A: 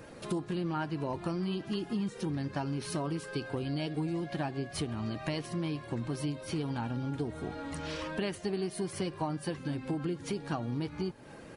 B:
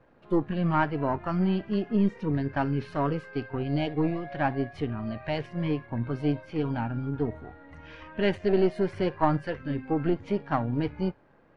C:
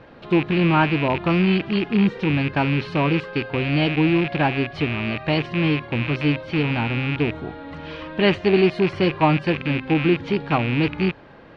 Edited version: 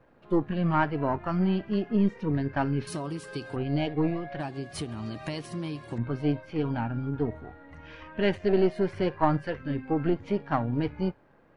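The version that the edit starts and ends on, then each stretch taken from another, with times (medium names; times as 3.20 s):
B
2.87–3.56 s: from A
4.40–5.98 s: from A
not used: C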